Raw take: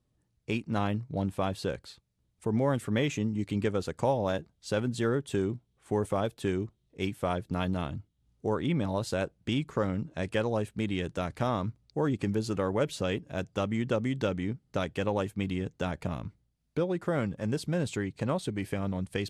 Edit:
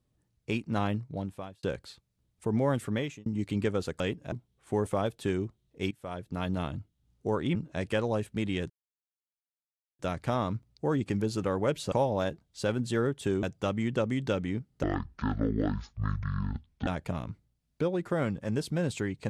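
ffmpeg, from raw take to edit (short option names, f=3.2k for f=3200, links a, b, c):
-filter_complex "[0:a]asplit=12[a][b][c][d][e][f][g][h][i][j][k][l];[a]atrim=end=1.63,asetpts=PTS-STARTPTS,afade=t=out:st=0.93:d=0.7[m];[b]atrim=start=1.63:end=3.26,asetpts=PTS-STARTPTS,afade=t=in:d=0.004:c=hsin,afade=t=out:st=1.22:d=0.41[n];[c]atrim=start=3.26:end=4.002,asetpts=PTS-STARTPTS,afade=t=in:d=0.004:c=hsin[o];[d]atrim=start=13.048:end=13.372[p];[e]atrim=start=5.508:end=7.1,asetpts=PTS-STARTPTS,afade=t=out:st=1.588:d=0.004:c=hsin:silence=0.133352[q];[f]atrim=start=7.1:end=8.742,asetpts=PTS-STARTPTS,afade=t=in:d=0.69:silence=0.133352[r];[g]atrim=start=9.968:end=11.12,asetpts=PTS-STARTPTS,afade=t=out:st=1.148:d=0.004:c=hsin,apad=pad_dur=1.29[s];[h]atrim=start=11.12:end=13.052,asetpts=PTS-STARTPTS,afade=t=in:d=0.004:c=hsin[t];[i]atrim=start=3.998:end=5.512[u];[j]atrim=start=13.368:end=14.774[v];[k]atrim=start=14.77:end=15.83,asetpts=PTS-STARTPTS,asetrate=22932,aresample=44100,atrim=end_sample=89896,asetpts=PTS-STARTPTS[w];[l]atrim=start=15.826[x];[m][n][o]concat=n=3:v=0:a=1[y];[y][p]acrossfade=d=0.004:c1=hsin:c2=hsin[z];[q][r]concat=n=2:v=0:a=1[aa];[z][aa]acrossfade=d=0.004:c1=hsin:c2=hsin[ab];[s][t]concat=n=2:v=0:a=1[ac];[ab][ac]acrossfade=d=0.004:c1=hsin:c2=hsin[ad];[ad][u]acrossfade=d=0.004:c1=hsin:c2=hsin[ae];[ae][v]acrossfade=d=0.004:c1=hsin:c2=hsin[af];[af][w]acrossfade=d=0.004:c1=hsin:c2=hsin[ag];[ag][x]acrossfade=d=0.004:c1=hsin:c2=hsin"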